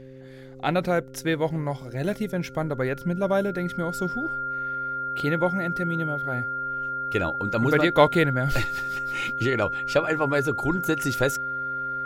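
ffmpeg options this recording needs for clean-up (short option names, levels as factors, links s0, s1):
-af "bandreject=f=131.6:t=h:w=4,bandreject=f=263.2:t=h:w=4,bandreject=f=394.8:t=h:w=4,bandreject=f=526.4:t=h:w=4,bandreject=f=1400:w=30"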